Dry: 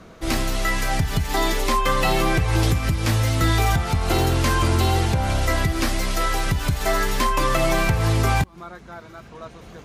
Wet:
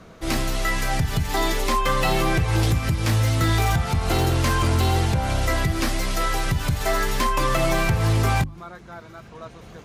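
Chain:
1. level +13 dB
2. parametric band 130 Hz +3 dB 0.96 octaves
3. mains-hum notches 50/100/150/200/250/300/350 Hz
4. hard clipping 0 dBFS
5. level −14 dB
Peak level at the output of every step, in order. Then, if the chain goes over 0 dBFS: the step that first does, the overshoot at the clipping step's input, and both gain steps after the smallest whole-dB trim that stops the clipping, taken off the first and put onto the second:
+4.0, +5.5, +5.5, 0.0, −14.0 dBFS
step 1, 5.5 dB
step 1 +7 dB, step 5 −8 dB

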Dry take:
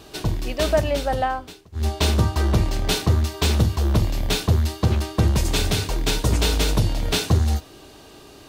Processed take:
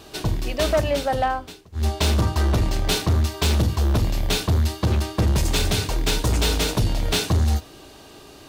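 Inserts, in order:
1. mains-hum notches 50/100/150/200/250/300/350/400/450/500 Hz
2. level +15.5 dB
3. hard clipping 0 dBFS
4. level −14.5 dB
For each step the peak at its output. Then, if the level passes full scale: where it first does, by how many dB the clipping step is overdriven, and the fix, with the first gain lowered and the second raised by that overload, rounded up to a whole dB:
−7.0, +8.5, 0.0, −14.5 dBFS
step 2, 8.5 dB
step 2 +6.5 dB, step 4 −5.5 dB

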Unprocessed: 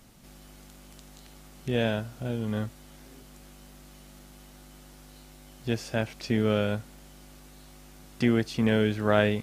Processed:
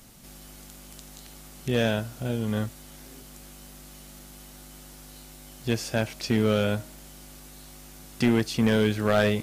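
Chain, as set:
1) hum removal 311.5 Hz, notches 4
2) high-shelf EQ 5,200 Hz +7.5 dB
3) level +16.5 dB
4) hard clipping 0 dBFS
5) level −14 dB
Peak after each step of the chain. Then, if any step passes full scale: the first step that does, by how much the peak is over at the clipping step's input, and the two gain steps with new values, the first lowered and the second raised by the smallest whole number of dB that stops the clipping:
−7.0, −6.5, +10.0, 0.0, −14.0 dBFS
step 3, 10.0 dB
step 3 +6.5 dB, step 5 −4 dB

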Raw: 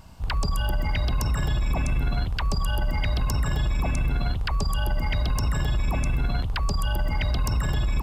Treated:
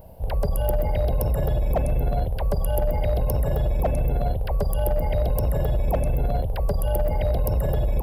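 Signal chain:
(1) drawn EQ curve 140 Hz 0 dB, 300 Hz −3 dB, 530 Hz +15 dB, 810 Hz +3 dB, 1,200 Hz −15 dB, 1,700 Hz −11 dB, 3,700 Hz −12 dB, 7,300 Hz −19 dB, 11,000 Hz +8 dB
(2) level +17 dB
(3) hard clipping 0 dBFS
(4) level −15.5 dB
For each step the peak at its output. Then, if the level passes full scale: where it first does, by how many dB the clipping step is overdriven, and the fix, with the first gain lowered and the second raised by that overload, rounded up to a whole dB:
−11.0, +6.0, 0.0, −15.5 dBFS
step 2, 6.0 dB
step 2 +11 dB, step 4 −9.5 dB

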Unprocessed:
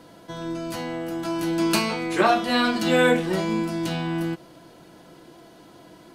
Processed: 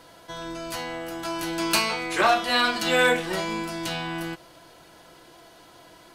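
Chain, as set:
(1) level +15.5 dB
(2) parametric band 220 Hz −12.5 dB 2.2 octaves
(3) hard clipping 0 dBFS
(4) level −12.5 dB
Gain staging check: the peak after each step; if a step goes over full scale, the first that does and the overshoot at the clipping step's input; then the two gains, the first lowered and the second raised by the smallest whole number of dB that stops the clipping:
+9.5, +7.0, 0.0, −12.5 dBFS
step 1, 7.0 dB
step 1 +8.5 dB, step 4 −5.5 dB

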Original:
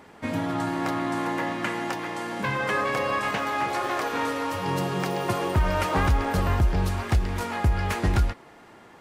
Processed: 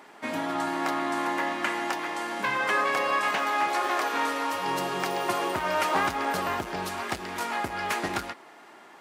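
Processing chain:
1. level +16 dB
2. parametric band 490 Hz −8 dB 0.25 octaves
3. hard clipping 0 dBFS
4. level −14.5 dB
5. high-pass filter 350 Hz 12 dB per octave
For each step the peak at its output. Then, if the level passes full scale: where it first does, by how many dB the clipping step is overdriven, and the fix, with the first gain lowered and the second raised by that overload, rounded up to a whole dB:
+3.0, +3.5, 0.0, −14.5, −12.0 dBFS
step 1, 3.5 dB
step 1 +12 dB, step 4 −10.5 dB

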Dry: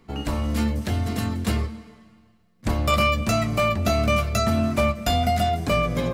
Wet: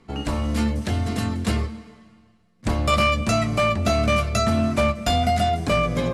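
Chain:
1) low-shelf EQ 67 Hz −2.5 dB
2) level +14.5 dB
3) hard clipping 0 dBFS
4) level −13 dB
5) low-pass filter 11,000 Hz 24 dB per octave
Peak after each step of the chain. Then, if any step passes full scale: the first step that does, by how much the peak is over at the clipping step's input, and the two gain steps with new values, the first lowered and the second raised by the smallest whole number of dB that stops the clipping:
−10.5, +4.0, 0.0, −13.0, −12.0 dBFS
step 2, 4.0 dB
step 2 +10.5 dB, step 4 −9 dB

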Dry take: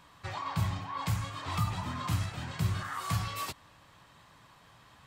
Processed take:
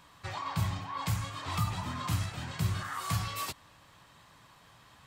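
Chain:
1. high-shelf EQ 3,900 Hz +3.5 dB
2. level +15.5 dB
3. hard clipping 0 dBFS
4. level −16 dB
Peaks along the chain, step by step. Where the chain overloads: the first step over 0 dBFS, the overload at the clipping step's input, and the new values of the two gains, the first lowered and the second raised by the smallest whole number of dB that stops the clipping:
−18.5, −3.0, −3.0, −19.0 dBFS
no step passes full scale

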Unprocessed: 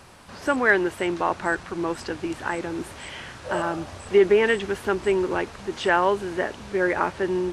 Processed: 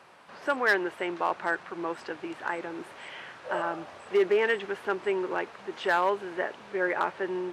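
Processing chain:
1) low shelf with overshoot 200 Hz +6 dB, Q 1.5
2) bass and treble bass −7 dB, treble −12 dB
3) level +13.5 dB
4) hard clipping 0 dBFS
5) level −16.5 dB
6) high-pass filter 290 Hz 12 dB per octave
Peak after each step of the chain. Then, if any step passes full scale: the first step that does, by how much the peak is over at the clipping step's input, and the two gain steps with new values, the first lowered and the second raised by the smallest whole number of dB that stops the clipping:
−6.5, −7.0, +6.5, 0.0, −16.5, −12.5 dBFS
step 3, 6.5 dB
step 3 +6.5 dB, step 5 −9.5 dB

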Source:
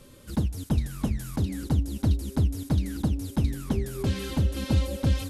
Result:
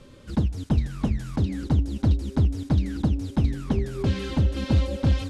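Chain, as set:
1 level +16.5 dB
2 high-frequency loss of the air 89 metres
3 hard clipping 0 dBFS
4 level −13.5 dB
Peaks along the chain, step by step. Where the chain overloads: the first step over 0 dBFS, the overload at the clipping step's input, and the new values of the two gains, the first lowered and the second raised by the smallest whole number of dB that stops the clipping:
+3.5, +3.5, 0.0, −13.5 dBFS
step 1, 3.5 dB
step 1 +12.5 dB, step 4 −9.5 dB

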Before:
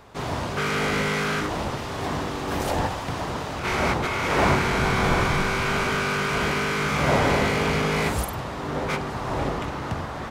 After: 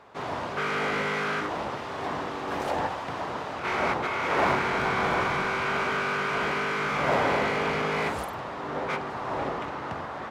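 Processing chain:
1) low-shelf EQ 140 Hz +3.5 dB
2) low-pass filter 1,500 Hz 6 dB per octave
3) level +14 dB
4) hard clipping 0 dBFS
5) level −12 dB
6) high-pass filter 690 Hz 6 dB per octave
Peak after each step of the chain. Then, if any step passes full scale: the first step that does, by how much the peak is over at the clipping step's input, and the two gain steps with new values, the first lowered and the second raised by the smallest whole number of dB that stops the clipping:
−7.5, −8.0, +6.0, 0.0, −12.0, −11.5 dBFS
step 3, 6.0 dB
step 3 +8 dB, step 5 −6 dB

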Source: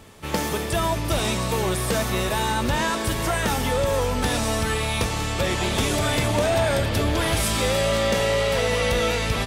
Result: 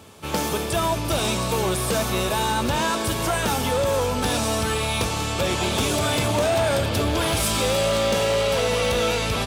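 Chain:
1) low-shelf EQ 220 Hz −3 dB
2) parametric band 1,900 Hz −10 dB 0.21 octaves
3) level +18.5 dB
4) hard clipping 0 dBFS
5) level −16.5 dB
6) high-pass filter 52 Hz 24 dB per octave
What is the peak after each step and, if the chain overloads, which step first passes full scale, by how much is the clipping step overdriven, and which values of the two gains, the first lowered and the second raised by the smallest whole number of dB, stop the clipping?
−12.0, −12.0, +6.5, 0.0, −16.5, −10.5 dBFS
step 3, 6.5 dB
step 3 +11.5 dB, step 5 −9.5 dB

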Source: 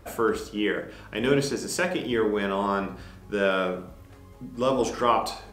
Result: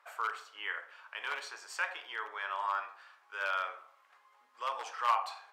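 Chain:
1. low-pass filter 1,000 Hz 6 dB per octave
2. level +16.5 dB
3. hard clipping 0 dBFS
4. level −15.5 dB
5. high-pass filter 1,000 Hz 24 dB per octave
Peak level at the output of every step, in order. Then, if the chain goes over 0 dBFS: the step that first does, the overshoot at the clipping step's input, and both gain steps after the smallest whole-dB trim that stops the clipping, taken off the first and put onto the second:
−9.0, +7.5, 0.0, −15.5, −17.0 dBFS
step 2, 7.5 dB
step 2 +8.5 dB, step 4 −7.5 dB

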